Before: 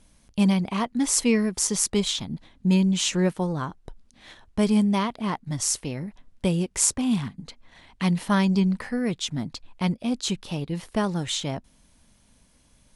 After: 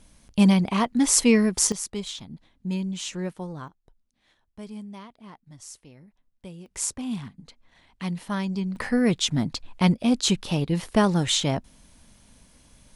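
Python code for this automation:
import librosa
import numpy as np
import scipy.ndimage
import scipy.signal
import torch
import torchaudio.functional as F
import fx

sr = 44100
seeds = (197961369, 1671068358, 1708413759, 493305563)

y = fx.gain(x, sr, db=fx.steps((0.0, 3.0), (1.72, -8.5), (3.68, -18.0), (6.66, -7.0), (8.76, 5.0)))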